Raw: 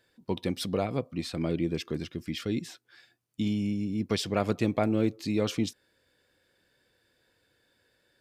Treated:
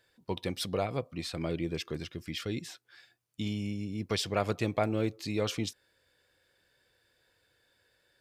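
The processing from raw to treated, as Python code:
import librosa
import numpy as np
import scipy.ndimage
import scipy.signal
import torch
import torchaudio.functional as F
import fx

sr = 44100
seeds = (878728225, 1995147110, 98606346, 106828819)

y = fx.peak_eq(x, sr, hz=240.0, db=-7.5, octaves=1.3)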